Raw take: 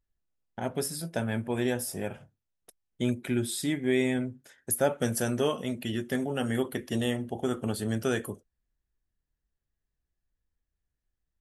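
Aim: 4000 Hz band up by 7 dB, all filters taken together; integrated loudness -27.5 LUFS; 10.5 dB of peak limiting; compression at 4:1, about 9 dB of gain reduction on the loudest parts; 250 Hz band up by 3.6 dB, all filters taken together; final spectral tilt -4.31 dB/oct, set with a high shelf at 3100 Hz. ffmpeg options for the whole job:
-af "equalizer=f=250:t=o:g=4,highshelf=f=3.1k:g=3.5,equalizer=f=4k:t=o:g=6.5,acompressor=threshold=-30dB:ratio=4,volume=10.5dB,alimiter=limit=-17dB:level=0:latency=1"

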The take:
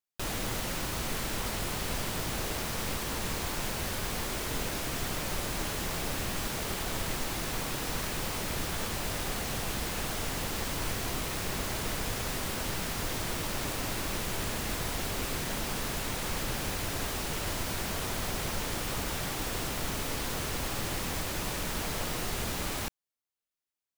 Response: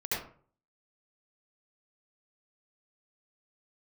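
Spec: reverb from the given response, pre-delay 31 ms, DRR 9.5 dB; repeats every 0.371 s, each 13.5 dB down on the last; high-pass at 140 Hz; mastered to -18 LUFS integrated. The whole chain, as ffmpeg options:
-filter_complex "[0:a]highpass=140,aecho=1:1:371|742:0.211|0.0444,asplit=2[a][b];[1:a]atrim=start_sample=2205,adelay=31[c];[b][c]afir=irnorm=-1:irlink=0,volume=-16dB[d];[a][d]amix=inputs=2:normalize=0,volume=15dB"

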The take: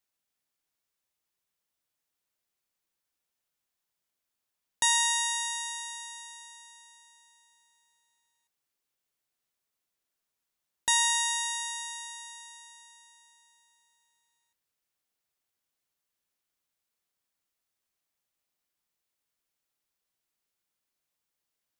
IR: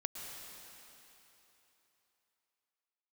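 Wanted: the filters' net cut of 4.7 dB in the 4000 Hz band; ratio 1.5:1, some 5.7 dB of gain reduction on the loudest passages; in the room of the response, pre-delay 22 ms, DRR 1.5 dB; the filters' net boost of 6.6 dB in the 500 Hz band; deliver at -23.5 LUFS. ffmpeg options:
-filter_complex "[0:a]equalizer=f=500:t=o:g=8.5,equalizer=f=4k:t=o:g=-5.5,acompressor=threshold=-38dB:ratio=1.5,asplit=2[a][b];[1:a]atrim=start_sample=2205,adelay=22[c];[b][c]afir=irnorm=-1:irlink=0,volume=-2dB[d];[a][d]amix=inputs=2:normalize=0,volume=10.5dB"

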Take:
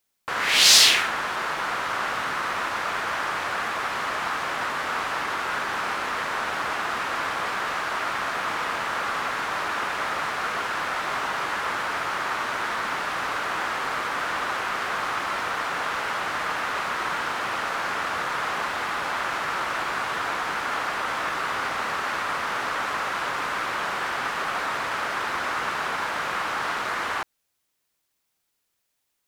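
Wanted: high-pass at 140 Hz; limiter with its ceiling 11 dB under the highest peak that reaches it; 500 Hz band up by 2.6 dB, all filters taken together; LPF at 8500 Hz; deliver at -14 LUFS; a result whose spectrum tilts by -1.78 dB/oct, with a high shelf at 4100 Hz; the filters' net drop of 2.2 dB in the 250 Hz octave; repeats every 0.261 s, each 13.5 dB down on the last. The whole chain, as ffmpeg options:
-af "highpass=140,lowpass=8.5k,equalizer=f=250:t=o:g=-4.5,equalizer=f=500:t=o:g=4.5,highshelf=f=4.1k:g=-7.5,alimiter=limit=-17.5dB:level=0:latency=1,aecho=1:1:261|522:0.211|0.0444,volume=13dB"

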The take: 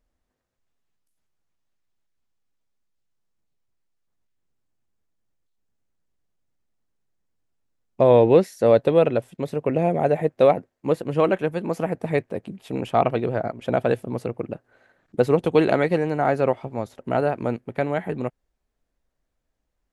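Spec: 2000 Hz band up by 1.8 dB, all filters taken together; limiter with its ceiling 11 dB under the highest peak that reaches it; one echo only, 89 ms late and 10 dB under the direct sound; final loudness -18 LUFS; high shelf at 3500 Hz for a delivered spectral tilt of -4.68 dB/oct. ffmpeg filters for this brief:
-af "equalizer=f=2k:t=o:g=4,highshelf=f=3.5k:g=-5.5,alimiter=limit=-14.5dB:level=0:latency=1,aecho=1:1:89:0.316,volume=8.5dB"

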